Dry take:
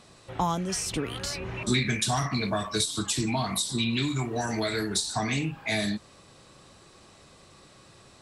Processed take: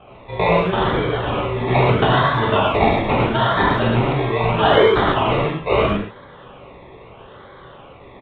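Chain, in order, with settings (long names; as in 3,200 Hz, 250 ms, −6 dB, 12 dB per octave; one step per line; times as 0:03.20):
low-shelf EQ 170 Hz −9 dB
comb filter 1.9 ms, depth 69%
sound drawn into the spectrogram fall, 0:04.58–0:04.85, 350–1,000 Hz −27 dBFS
sample-and-hold swept by an LFO 23×, swing 60% 0.77 Hz
reverb whose tail is shaped and stops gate 160 ms flat, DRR −5 dB
downsampling to 8,000 Hz
far-end echo of a speakerphone 100 ms, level −20 dB
level +6 dB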